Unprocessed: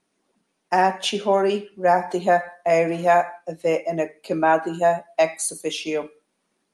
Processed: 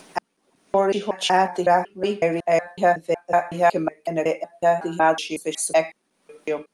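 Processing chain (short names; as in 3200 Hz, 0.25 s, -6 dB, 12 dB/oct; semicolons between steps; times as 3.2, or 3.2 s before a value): slices in reverse order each 0.185 s, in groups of 4; upward compressor, threshold -29 dBFS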